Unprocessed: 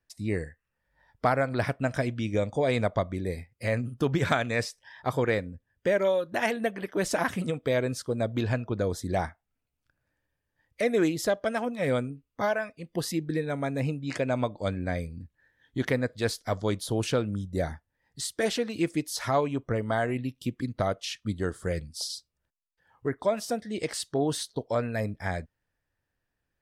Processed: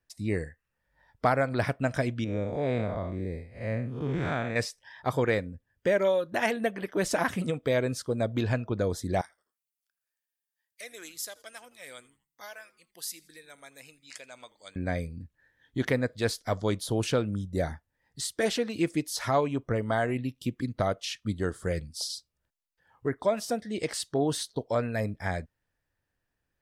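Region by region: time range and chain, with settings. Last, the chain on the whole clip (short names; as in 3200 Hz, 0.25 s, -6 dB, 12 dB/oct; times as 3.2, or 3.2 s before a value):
2.24–4.56 time blur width 0.155 s + LPF 2000 Hz 6 dB/oct
9.21–14.76 differentiator + frequency-shifting echo 83 ms, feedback 41%, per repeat -140 Hz, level -21 dB
whole clip: dry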